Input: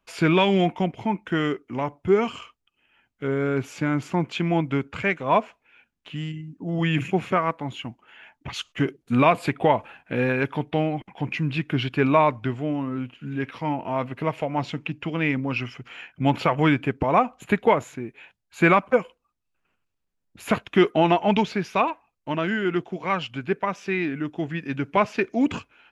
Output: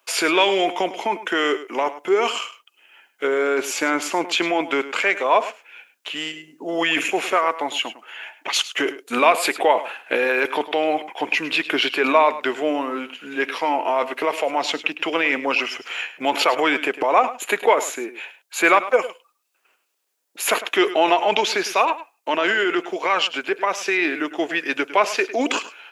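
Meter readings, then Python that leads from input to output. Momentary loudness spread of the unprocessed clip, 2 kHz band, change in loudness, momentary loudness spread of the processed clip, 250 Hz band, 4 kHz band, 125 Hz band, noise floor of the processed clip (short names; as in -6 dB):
13 LU, +7.5 dB, +3.5 dB, 11 LU, -3.0 dB, +10.5 dB, under -20 dB, -67 dBFS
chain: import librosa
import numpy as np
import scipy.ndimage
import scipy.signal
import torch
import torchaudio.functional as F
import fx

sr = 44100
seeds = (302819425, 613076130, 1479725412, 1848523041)

p1 = scipy.signal.sosfilt(scipy.signal.butter(4, 380.0, 'highpass', fs=sr, output='sos'), x)
p2 = fx.high_shelf(p1, sr, hz=4700.0, db=10.5)
p3 = fx.over_compress(p2, sr, threshold_db=-29.0, ratio=-0.5)
p4 = p2 + (p3 * librosa.db_to_amplitude(-2.0))
p5 = p4 + 10.0 ** (-14.5 / 20.0) * np.pad(p4, (int(104 * sr / 1000.0), 0))[:len(p4)]
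y = p5 * librosa.db_to_amplitude(2.5)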